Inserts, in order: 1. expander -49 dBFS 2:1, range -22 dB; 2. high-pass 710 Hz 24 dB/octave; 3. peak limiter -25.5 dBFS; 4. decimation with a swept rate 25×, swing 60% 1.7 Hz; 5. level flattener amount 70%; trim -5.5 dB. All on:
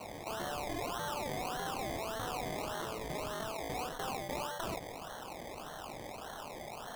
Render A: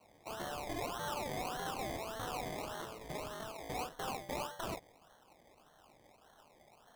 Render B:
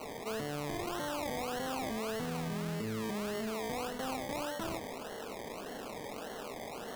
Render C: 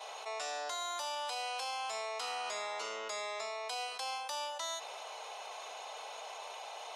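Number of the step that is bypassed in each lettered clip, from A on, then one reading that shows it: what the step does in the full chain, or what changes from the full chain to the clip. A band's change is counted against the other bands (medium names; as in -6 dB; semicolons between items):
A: 5, momentary loudness spread change -2 LU; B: 2, 250 Hz band +6.0 dB; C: 4, 250 Hz band -23.0 dB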